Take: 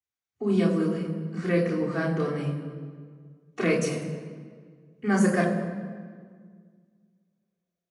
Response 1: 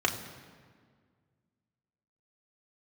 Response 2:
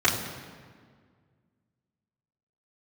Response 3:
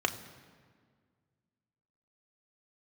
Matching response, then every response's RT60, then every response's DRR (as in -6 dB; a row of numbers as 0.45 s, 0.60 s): 2; 1.8 s, 1.8 s, 1.8 s; 0.5 dB, -8.5 dB, 5.0 dB